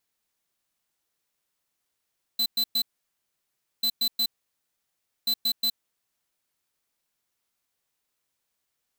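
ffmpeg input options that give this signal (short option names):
-f lavfi -i "aevalsrc='0.0631*(2*lt(mod(4030*t,1),0.5)-1)*clip(min(mod(mod(t,1.44),0.18),0.07-mod(mod(t,1.44),0.18))/0.005,0,1)*lt(mod(t,1.44),0.54)':d=4.32:s=44100"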